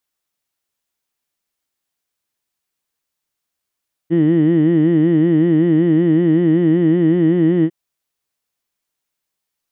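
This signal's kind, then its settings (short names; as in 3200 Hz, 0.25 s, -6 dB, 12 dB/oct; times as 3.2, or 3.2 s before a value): formant vowel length 3.60 s, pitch 160 Hz, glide +1 st, vibrato depth 1.2 st, F1 320 Hz, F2 1900 Hz, F3 3000 Hz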